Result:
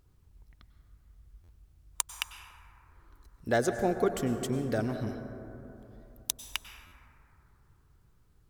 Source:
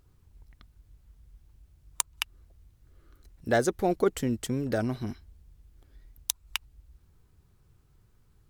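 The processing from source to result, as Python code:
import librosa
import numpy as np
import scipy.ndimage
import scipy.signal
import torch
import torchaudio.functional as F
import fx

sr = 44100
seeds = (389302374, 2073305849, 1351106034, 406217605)

y = fx.rev_plate(x, sr, seeds[0], rt60_s=3.3, hf_ratio=0.25, predelay_ms=85, drr_db=7.5)
y = fx.buffer_glitch(y, sr, at_s=(1.43, 6.86), block=512, repeats=4)
y = y * librosa.db_to_amplitude(-2.5)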